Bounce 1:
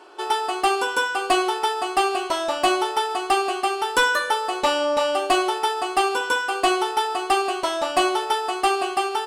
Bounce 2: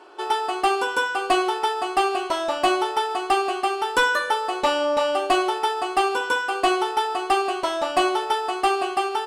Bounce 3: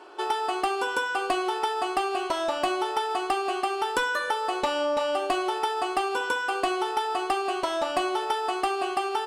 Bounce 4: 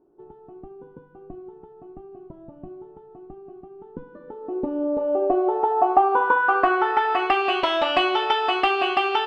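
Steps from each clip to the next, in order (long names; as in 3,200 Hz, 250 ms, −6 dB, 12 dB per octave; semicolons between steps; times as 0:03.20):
high-shelf EQ 4,300 Hz −5.5 dB
downward compressor, threshold −23 dBFS, peak gain reduction 8 dB
low-pass filter sweep 150 Hz → 2,900 Hz, 0:03.72–0:07.54; level +4.5 dB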